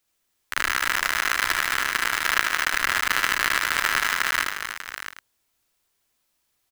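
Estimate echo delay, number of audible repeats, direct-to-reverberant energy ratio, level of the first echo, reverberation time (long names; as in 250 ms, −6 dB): 75 ms, 5, no reverb audible, −2.0 dB, no reverb audible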